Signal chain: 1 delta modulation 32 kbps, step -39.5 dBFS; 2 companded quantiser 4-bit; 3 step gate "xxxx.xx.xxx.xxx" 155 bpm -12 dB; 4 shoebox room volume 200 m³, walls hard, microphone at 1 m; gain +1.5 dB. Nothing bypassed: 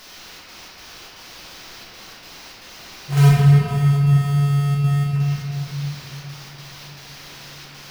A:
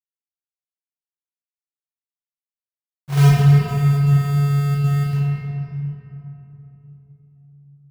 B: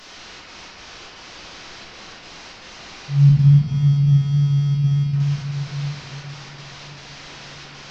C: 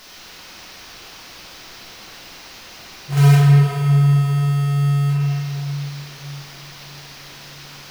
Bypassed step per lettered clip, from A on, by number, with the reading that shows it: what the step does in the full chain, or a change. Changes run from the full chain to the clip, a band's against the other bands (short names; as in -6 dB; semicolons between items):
1, 4 kHz band -5.0 dB; 2, distortion -15 dB; 3, momentary loudness spread change -2 LU